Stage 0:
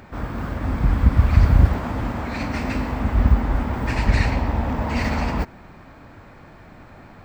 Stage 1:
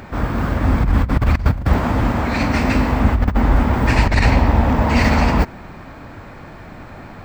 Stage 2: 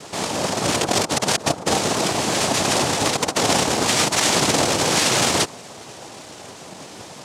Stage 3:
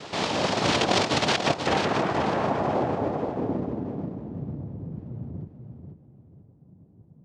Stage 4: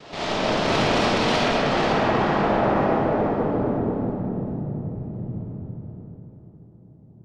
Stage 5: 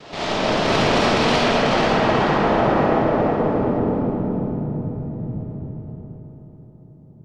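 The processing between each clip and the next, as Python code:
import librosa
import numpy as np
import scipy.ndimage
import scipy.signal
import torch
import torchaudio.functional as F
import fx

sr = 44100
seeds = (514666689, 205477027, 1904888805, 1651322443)

y1 = fx.over_compress(x, sr, threshold_db=-18.0, ratio=-0.5)
y1 = y1 * librosa.db_to_amplitude(6.0)
y2 = fx.low_shelf(y1, sr, hz=400.0, db=-3.5)
y2 = (np.mod(10.0 ** (12.0 / 20.0) * y2 + 1.0, 2.0) - 1.0) / 10.0 ** (12.0 / 20.0)
y2 = fx.noise_vocoder(y2, sr, seeds[0], bands=2)
y3 = fx.rider(y2, sr, range_db=4, speed_s=2.0)
y3 = fx.filter_sweep_lowpass(y3, sr, from_hz=3900.0, to_hz=140.0, start_s=1.23, end_s=4.34, q=1.1)
y3 = fx.echo_feedback(y3, sr, ms=489, feedback_pct=30, wet_db=-7.0)
y3 = y3 * librosa.db_to_amplitude(-4.5)
y4 = fx.tube_stage(y3, sr, drive_db=22.0, bias=0.75)
y4 = fx.air_absorb(y4, sr, metres=67.0)
y4 = fx.rev_freeverb(y4, sr, rt60_s=2.8, hf_ratio=0.5, predelay_ms=10, drr_db=-8.0)
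y5 = fx.echo_feedback(y4, sr, ms=375, feedback_pct=36, wet_db=-9.0)
y5 = y5 * librosa.db_to_amplitude(2.5)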